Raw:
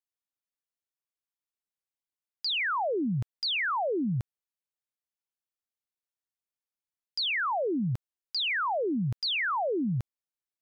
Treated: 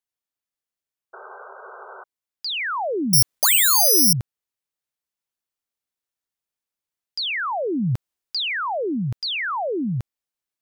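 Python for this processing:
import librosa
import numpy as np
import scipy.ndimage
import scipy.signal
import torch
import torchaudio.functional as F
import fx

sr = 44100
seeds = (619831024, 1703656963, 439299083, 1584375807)

y = fx.rider(x, sr, range_db=10, speed_s=0.5)
y = fx.spec_paint(y, sr, seeds[0], shape='noise', start_s=1.13, length_s=0.91, low_hz=370.0, high_hz=1600.0, level_db=-45.0)
y = fx.resample_bad(y, sr, factor=8, down='none', up='zero_stuff', at=(3.13, 4.13))
y = F.gain(torch.from_numpy(y), 4.5).numpy()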